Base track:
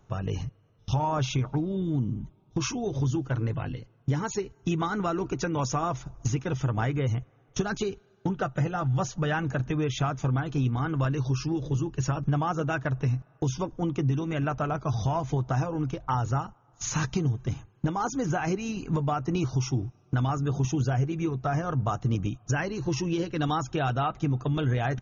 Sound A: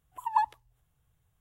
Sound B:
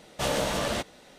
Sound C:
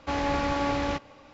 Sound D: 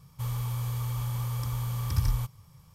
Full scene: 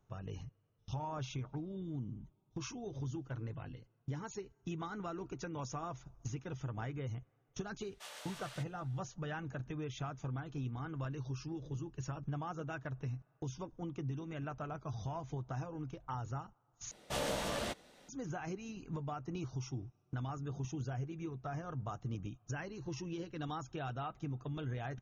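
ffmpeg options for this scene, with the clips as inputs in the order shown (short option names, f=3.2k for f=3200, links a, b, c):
-filter_complex "[2:a]asplit=2[a][b];[0:a]volume=-14dB[c];[a]highpass=1.1k[d];[c]asplit=2[e][f];[e]atrim=end=16.914[g];[b]atrim=end=1.18,asetpts=PTS-STARTPTS,volume=-9dB[h];[f]atrim=start=18.086[i];[d]atrim=end=1.18,asetpts=PTS-STARTPTS,volume=-18dB,afade=t=in:d=0.004:c=hsin,afade=t=out:st=1.176:d=0.004:c=hsin,adelay=7810[j];[g][h]acrossfade=d=0.004:c1=hsin:c2=hsin[k];[k][i]acrossfade=d=0.004:c1=hsin:c2=hsin[l];[l][j]amix=inputs=2:normalize=0"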